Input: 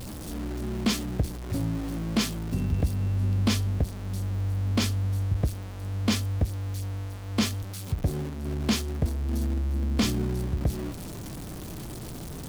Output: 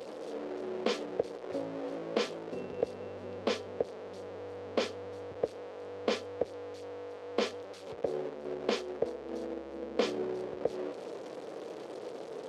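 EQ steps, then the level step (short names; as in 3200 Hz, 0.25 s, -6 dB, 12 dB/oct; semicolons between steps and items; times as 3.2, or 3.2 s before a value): resonant high-pass 480 Hz, resonance Q 4.9; tape spacing loss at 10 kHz 31 dB; high shelf 3100 Hz +9.5 dB; -2.0 dB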